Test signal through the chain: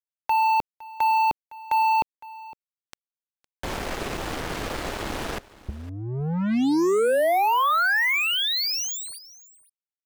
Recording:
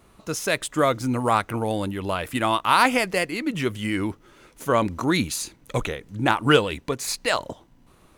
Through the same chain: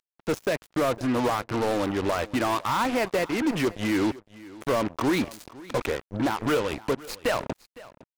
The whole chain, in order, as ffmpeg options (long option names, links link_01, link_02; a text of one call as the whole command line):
ffmpeg -i in.wav -filter_complex "[0:a]lowpass=frequency=1100:poles=1,equalizer=frequency=170:width=2.8:gain=-3,acrossover=split=250[link_01][link_02];[link_01]acompressor=threshold=-40dB:ratio=10[link_03];[link_02]alimiter=limit=-19.5dB:level=0:latency=1:release=437[link_04];[link_03][link_04]amix=inputs=2:normalize=0,acompressor=mode=upward:threshold=-46dB:ratio=2.5,acrusher=bits=5:mix=0:aa=0.5,asoftclip=type=hard:threshold=-26.5dB,asplit=2[link_05][link_06];[link_06]aecho=0:1:510:0.1[link_07];[link_05][link_07]amix=inputs=2:normalize=0,volume=7.5dB" out.wav